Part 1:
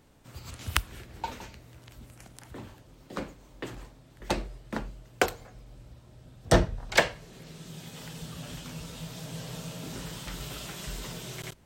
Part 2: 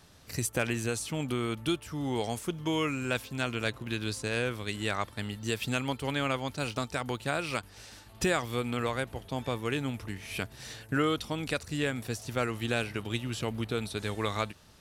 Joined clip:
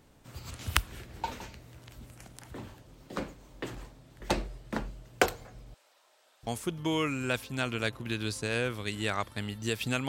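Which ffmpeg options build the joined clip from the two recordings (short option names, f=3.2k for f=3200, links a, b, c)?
-filter_complex "[0:a]asettb=1/sr,asplit=3[a][b][c];[a]atrim=end=5.744[d];[b]atrim=start=5.74:end=6.47,asetpts=PTS-STARTPTS,afade=t=in:d=0.004:c=qsin,afade=t=out:st=0.726:d=0.004:c=qsin,acrossover=split=600[e][f];[e]adelay=690[g];[g][f]amix=inputs=2:normalize=0,atrim=end_sample=32193[h];[c]atrim=start=6.466[i];[d][h]acrossfade=d=0.004:c1=hsin:c2=qsin[j];[j][i]acrossfade=d=0.004:c1=qsin:c2=hsin,apad=whole_dur=10.08,atrim=end=10.08,atrim=end=6.472[k];[1:a]atrim=start=2.278:end=5.89[l];[k][l]acrossfade=d=0.004:c1=hsin:c2=hsin"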